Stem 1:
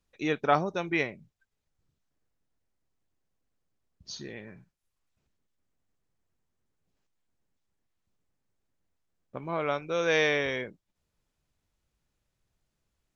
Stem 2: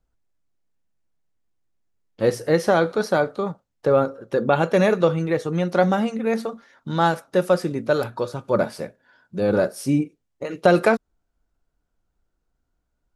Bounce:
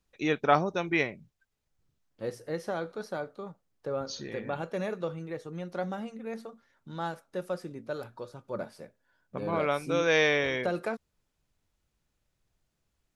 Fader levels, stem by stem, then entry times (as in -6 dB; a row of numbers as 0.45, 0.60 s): +1.0, -15.5 dB; 0.00, 0.00 s